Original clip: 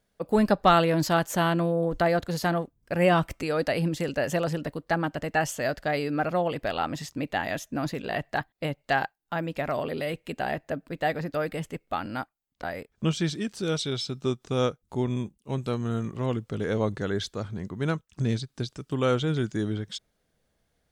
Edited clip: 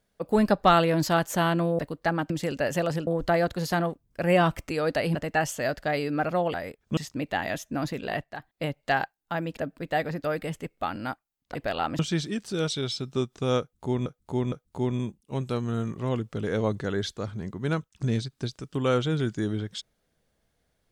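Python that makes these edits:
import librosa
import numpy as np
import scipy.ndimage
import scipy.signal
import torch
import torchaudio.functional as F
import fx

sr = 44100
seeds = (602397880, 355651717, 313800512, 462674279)

y = fx.edit(x, sr, fx.swap(start_s=1.79, length_s=2.08, other_s=4.64, other_length_s=0.51),
    fx.swap(start_s=6.54, length_s=0.44, other_s=12.65, other_length_s=0.43),
    fx.fade_down_up(start_s=8.0, length_s=0.68, db=-10.0, fade_s=0.25, curve='log'),
    fx.cut(start_s=9.58, length_s=1.09),
    fx.repeat(start_s=14.69, length_s=0.46, count=3), tone=tone)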